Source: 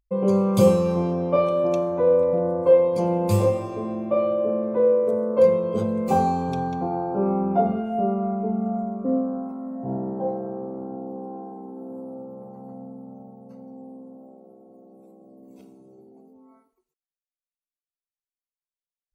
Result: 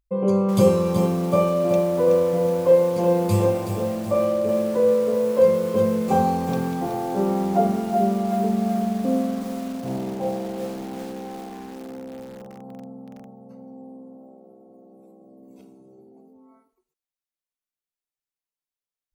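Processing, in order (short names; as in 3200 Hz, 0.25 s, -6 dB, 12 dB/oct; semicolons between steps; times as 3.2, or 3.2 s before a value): lo-fi delay 0.374 s, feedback 55%, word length 6-bit, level -7 dB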